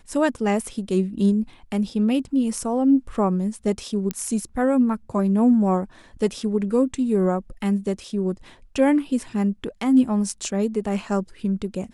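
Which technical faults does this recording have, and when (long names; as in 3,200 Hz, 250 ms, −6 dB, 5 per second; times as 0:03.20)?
0:04.11: click −11 dBFS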